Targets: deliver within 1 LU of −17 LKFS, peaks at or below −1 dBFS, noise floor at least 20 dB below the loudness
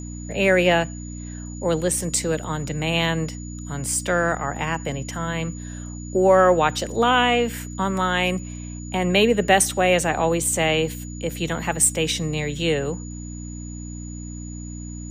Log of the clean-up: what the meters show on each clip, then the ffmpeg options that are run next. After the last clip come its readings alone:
mains hum 60 Hz; hum harmonics up to 300 Hz; level of the hum −32 dBFS; interfering tone 6,900 Hz; level of the tone −41 dBFS; integrated loudness −21.5 LKFS; sample peak −3.0 dBFS; target loudness −17.0 LKFS
→ -af "bandreject=frequency=60:width_type=h:width=4,bandreject=frequency=120:width_type=h:width=4,bandreject=frequency=180:width_type=h:width=4,bandreject=frequency=240:width_type=h:width=4,bandreject=frequency=300:width_type=h:width=4"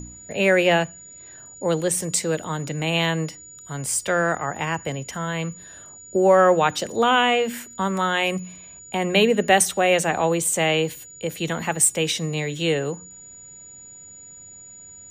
mains hum none found; interfering tone 6,900 Hz; level of the tone −41 dBFS
→ -af "bandreject=frequency=6900:width=30"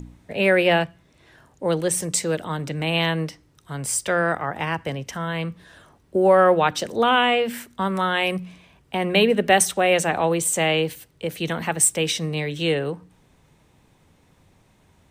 interfering tone none found; integrated loudness −21.5 LKFS; sample peak −3.0 dBFS; target loudness −17.0 LKFS
→ -af "volume=4.5dB,alimiter=limit=-1dB:level=0:latency=1"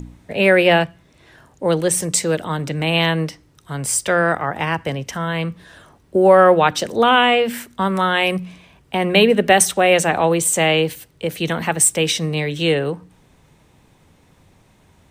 integrated loudness −17.0 LKFS; sample peak −1.0 dBFS; background noise floor −55 dBFS

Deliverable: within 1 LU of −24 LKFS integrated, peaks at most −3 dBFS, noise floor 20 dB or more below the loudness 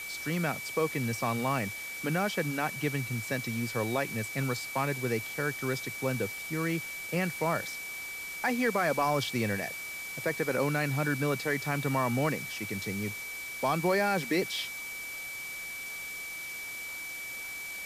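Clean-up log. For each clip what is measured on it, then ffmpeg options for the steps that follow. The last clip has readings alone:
interfering tone 2,300 Hz; level of the tone −38 dBFS; background noise floor −40 dBFS; target noise floor −52 dBFS; integrated loudness −31.5 LKFS; sample peak −16.5 dBFS; target loudness −24.0 LKFS
→ -af "bandreject=frequency=2300:width=30"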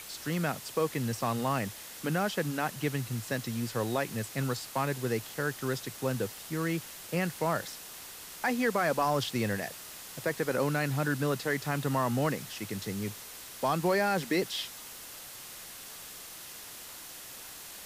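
interfering tone none found; background noise floor −46 dBFS; target noise floor −52 dBFS
→ -af "afftdn=noise_reduction=6:noise_floor=-46"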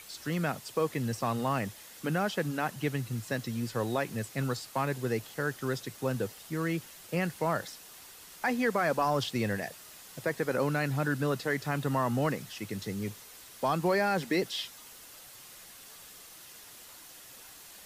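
background noise floor −51 dBFS; target noise floor −52 dBFS
→ -af "afftdn=noise_reduction=6:noise_floor=-51"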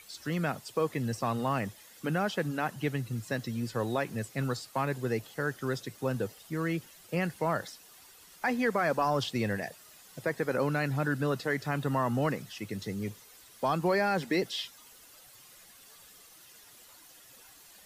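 background noise floor −55 dBFS; integrated loudness −32.0 LKFS; sample peak −17.5 dBFS; target loudness −24.0 LKFS
→ -af "volume=8dB"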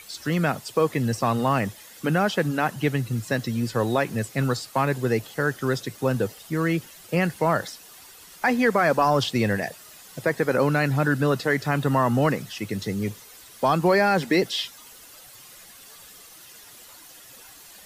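integrated loudness −24.0 LKFS; sample peak −9.5 dBFS; background noise floor −47 dBFS

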